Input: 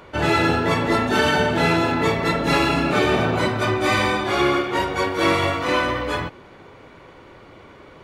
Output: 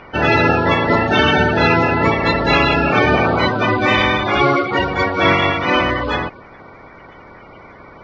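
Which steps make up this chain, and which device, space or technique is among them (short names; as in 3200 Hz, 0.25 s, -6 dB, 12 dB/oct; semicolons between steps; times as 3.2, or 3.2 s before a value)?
clip after many re-uploads (LPF 4700 Hz 24 dB/oct; bin magnitudes rounded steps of 30 dB); gain +5.5 dB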